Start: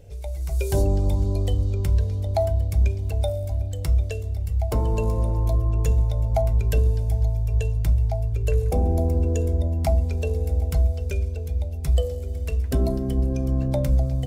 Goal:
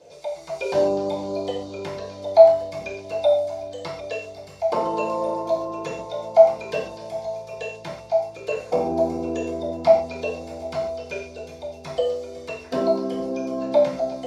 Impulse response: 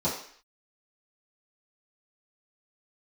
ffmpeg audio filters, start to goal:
-filter_complex "[0:a]highpass=720,lowpass=7900[s0];[1:a]atrim=start_sample=2205,atrim=end_sample=6615[s1];[s0][s1]afir=irnorm=-1:irlink=0,acrossover=split=4200[s2][s3];[s3]acompressor=threshold=0.00224:ratio=4:attack=1:release=60[s4];[s2][s4]amix=inputs=2:normalize=0,volume=1.12"

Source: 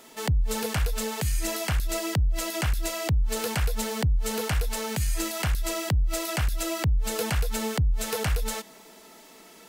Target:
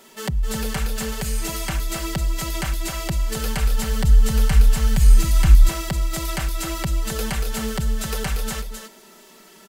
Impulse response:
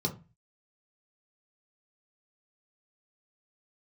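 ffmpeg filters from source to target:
-filter_complex "[0:a]aecho=1:1:5.2:0.67,aecho=1:1:262:0.473,asettb=1/sr,asplit=3[s0][s1][s2];[s0]atrim=end=3.364[s3];[s1]atrim=start=3.36:end=5.69,asetpts=PTS-STARTPTS,afade=t=in:d=0.004:c=qsin,afade=t=out:st=2.326:d=0.004:c=qsin,asubboost=boost=9:cutoff=150[s4];[s2]atrim=start=5.686[s5];[s3][s4]acrossfade=d=0.004:c1=hsin:c2=qsin[s6];[s6][s5]acrossfade=d=0.004:c1=qsin:c2=hsin"

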